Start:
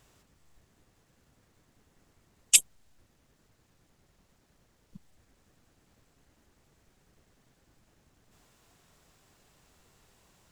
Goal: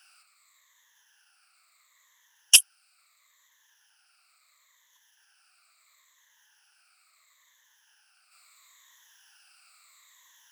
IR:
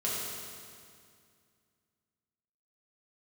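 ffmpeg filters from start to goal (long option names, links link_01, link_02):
-af "afftfilt=real='re*pow(10,17/40*sin(2*PI*(1.1*log(max(b,1)*sr/1024/100)/log(2)-(-0.74)*(pts-256)/sr)))':imag='im*pow(10,17/40*sin(2*PI*(1.1*log(max(b,1)*sr/1024/100)/log(2)-(-0.74)*(pts-256)/sr)))':win_size=1024:overlap=0.75,highpass=frequency=1200:width=0.5412,highpass=frequency=1200:width=1.3066,acontrast=45,volume=-1dB"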